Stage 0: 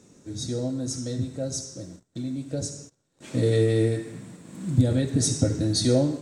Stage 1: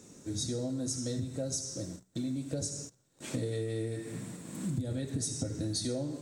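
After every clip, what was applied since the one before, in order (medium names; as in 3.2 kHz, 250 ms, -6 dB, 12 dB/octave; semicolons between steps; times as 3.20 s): treble shelf 8.6 kHz +10 dB; de-hum 62.81 Hz, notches 3; compression 10:1, threshold -31 dBFS, peak gain reduction 16.5 dB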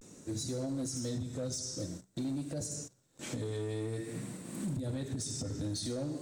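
peak limiter -28 dBFS, peak gain reduction 6.5 dB; vibrato 0.5 Hz 78 cents; overload inside the chain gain 31 dB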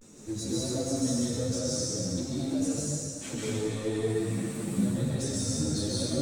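plate-style reverb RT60 2.1 s, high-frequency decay 0.9×, pre-delay 115 ms, DRR -6 dB; three-phase chorus; trim +4 dB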